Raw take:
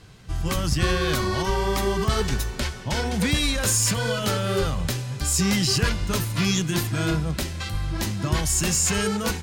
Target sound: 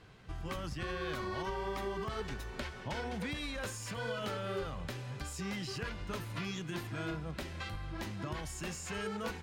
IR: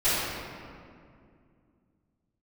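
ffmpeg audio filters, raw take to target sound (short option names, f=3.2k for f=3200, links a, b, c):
-af "acompressor=threshold=-28dB:ratio=4,bass=f=250:g=-6,treble=f=4k:g=-12,volume=-5dB"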